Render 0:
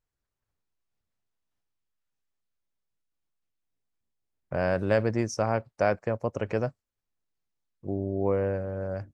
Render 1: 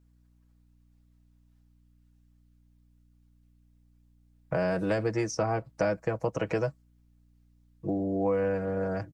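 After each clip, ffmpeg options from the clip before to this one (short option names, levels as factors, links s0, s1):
-filter_complex "[0:a]aecho=1:1:6.2:0.84,acrossover=split=320|810|6200[s0][s1][s2][s3];[s0]acompressor=threshold=0.0126:ratio=4[s4];[s1]acompressor=threshold=0.0178:ratio=4[s5];[s2]acompressor=threshold=0.00891:ratio=4[s6];[s3]acompressor=threshold=0.00126:ratio=4[s7];[s4][s5][s6][s7]amix=inputs=4:normalize=0,aeval=exprs='val(0)+0.000501*(sin(2*PI*60*n/s)+sin(2*PI*2*60*n/s)/2+sin(2*PI*3*60*n/s)/3+sin(2*PI*4*60*n/s)/4+sin(2*PI*5*60*n/s)/5)':c=same,volume=1.68"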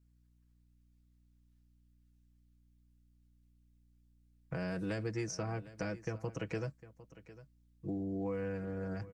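-af "equalizer=f=740:t=o:w=1.9:g=-9,bandreject=f=600:w=12,aecho=1:1:754:0.141,volume=0.562"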